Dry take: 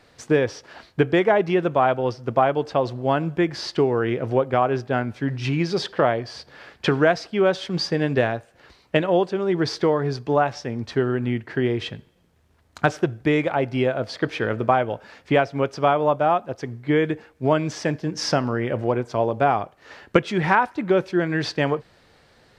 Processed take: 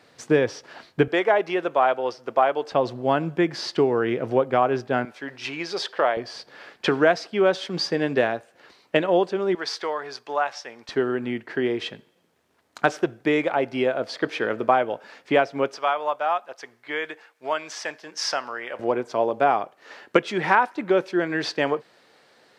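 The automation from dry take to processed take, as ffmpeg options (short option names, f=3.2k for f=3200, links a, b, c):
-af "asetnsamples=n=441:p=0,asendcmd='1.08 highpass f 440;2.72 highpass f 170;5.05 highpass f 520;6.17 highpass f 230;9.55 highpass f 790;10.89 highpass f 260;15.77 highpass f 850;18.79 highpass f 280',highpass=140"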